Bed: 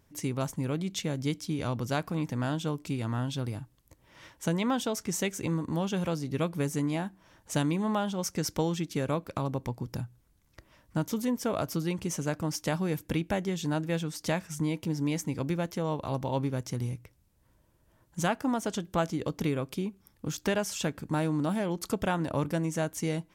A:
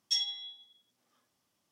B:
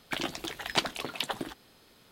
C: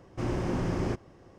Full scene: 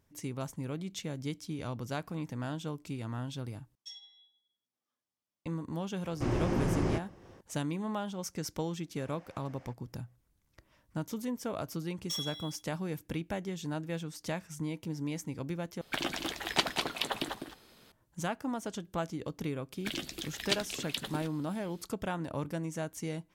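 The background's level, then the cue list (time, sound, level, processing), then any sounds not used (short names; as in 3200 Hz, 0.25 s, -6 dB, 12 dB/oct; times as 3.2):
bed -6.5 dB
3.75 replace with A -17.5 dB
6.03 add C -0.5 dB
8.78 add C -17.5 dB + rippled Chebyshev high-pass 490 Hz, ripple 6 dB
11.99 add A -13.5 dB + sample leveller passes 3
15.81 replace with B -1 dB + echo 0.199 s -5.5 dB
19.74 add B -1 dB + bell 900 Hz -13.5 dB 1.6 oct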